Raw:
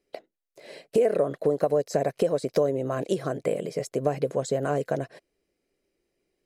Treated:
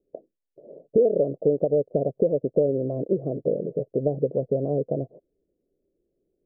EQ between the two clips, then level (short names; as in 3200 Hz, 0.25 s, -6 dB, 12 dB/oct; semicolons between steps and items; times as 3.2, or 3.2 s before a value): steep low-pass 590 Hz 36 dB/oct; +3.0 dB